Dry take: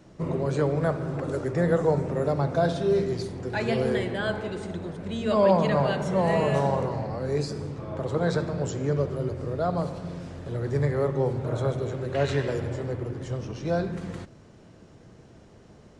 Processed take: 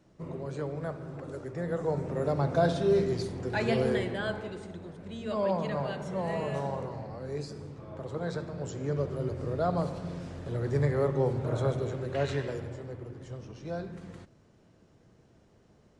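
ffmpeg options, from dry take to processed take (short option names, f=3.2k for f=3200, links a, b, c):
-af "volume=5.5dB,afade=t=in:st=1.67:d=0.92:silence=0.354813,afade=t=out:st=3.75:d=0.97:silence=0.421697,afade=t=in:st=8.52:d=0.98:silence=0.446684,afade=t=out:st=11.73:d=1.09:silence=0.398107"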